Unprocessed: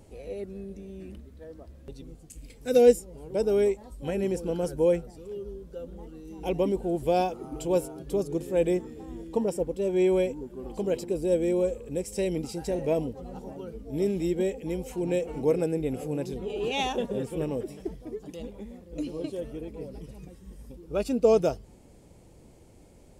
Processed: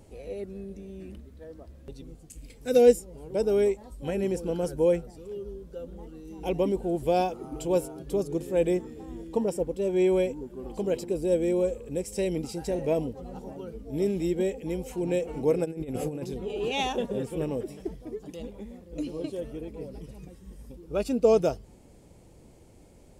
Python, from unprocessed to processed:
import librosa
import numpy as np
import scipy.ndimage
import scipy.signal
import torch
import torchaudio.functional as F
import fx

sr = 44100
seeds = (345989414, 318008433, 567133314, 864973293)

y = fx.over_compress(x, sr, threshold_db=-33.0, ratio=-0.5, at=(15.64, 16.23), fade=0.02)